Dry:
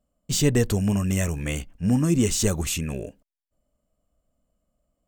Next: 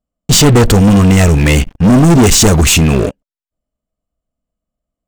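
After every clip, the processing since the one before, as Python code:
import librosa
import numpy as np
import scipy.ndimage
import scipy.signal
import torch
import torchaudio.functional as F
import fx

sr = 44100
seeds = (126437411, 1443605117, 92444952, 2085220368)

y = fx.high_shelf(x, sr, hz=9400.0, db=-10.0)
y = fx.leveller(y, sr, passes=5)
y = fx.notch(y, sr, hz=570.0, q=12.0)
y = y * librosa.db_to_amplitude(4.5)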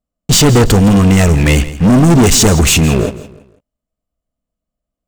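y = fx.echo_feedback(x, sr, ms=165, feedback_pct=35, wet_db=-16)
y = y * librosa.db_to_amplitude(-1.0)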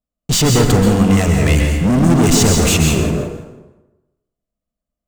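y = fx.rev_plate(x, sr, seeds[0], rt60_s=1.0, hf_ratio=0.6, predelay_ms=115, drr_db=1.5)
y = y * librosa.db_to_amplitude(-6.0)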